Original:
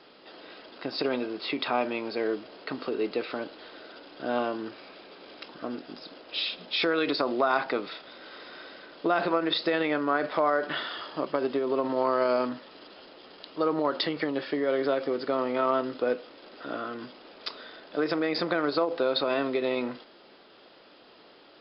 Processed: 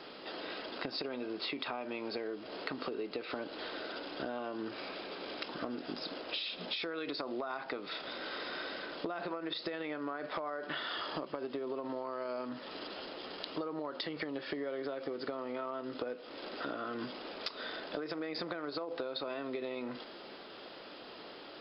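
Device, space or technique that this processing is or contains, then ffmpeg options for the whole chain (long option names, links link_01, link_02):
serial compression, peaks first: -af "acompressor=threshold=-36dB:ratio=6,acompressor=threshold=-41dB:ratio=3,volume=5dB"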